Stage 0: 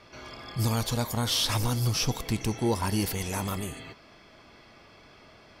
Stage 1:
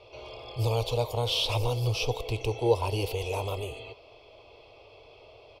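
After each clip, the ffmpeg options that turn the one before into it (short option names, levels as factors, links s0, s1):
-af "firequalizer=gain_entry='entry(120,0);entry(170,-22);entry(450,9);entry(660,4);entry(1000,-1);entry(1700,-24);entry(2500,4);entry(6200,-11)':delay=0.05:min_phase=1"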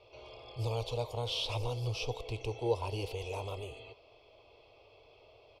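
-af "lowpass=9300,volume=0.422"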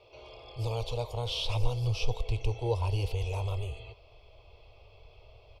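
-af "asubboost=boost=10.5:cutoff=81,volume=1.19"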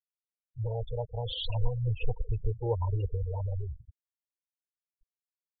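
-af "afftfilt=real='re*gte(hypot(re,im),0.0501)':imag='im*gte(hypot(re,im),0.0501)':win_size=1024:overlap=0.75"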